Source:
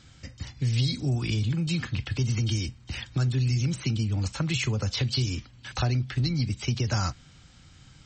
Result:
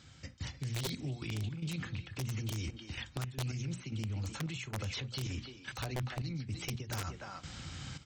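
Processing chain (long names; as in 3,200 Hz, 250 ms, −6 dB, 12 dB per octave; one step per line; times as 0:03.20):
far-end echo of a speakerphone 300 ms, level −10 dB
dynamic equaliser 4,800 Hz, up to −8 dB, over −51 dBFS, Q 3.7
high-pass filter 53 Hz 12 dB per octave
mains-hum notches 60/120/180/240/300/360 Hz
gate pattern "...xxxx..xx.x" 111 BPM −12 dB
wrap-around overflow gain 19.5 dB
reversed playback
downward compressor 16 to 1, threshold −40 dBFS, peak gain reduction 18 dB
reversed playback
brickwall limiter −39.5 dBFS, peak gain reduction 10.5 dB
highs frequency-modulated by the lows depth 0.1 ms
level +9 dB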